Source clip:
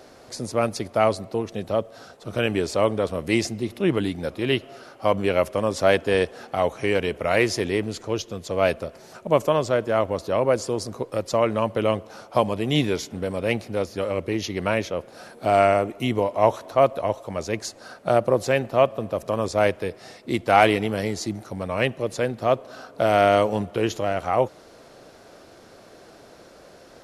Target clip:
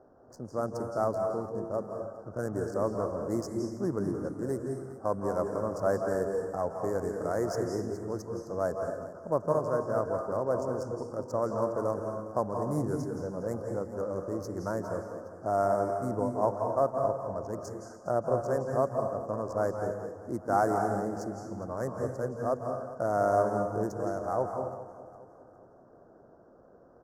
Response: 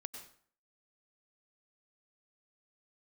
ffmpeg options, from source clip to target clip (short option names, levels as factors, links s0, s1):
-filter_complex "[0:a]adynamicsmooth=sensitivity=7:basefreq=1200,asuperstop=centerf=2900:order=8:qfactor=0.74,aecho=1:1:410|820|1230|1640:0.158|0.0666|0.028|0.0117[s0];[1:a]atrim=start_sample=2205,asetrate=25137,aresample=44100[s1];[s0][s1]afir=irnorm=-1:irlink=0,volume=0.398"